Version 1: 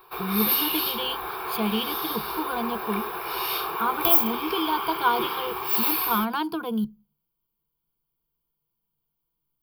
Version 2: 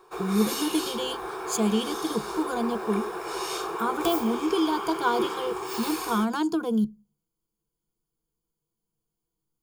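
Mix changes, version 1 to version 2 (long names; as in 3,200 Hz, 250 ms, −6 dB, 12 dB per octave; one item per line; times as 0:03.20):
background: add bass and treble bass −3 dB, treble −8 dB
master: remove drawn EQ curve 140 Hz 0 dB, 340 Hz −5 dB, 590 Hz −2 dB, 950 Hz +4 dB, 1,800 Hz +2 dB, 2,600 Hz +7 dB, 4,700 Hz −1 dB, 7,200 Hz −29 dB, 12,000 Hz +10 dB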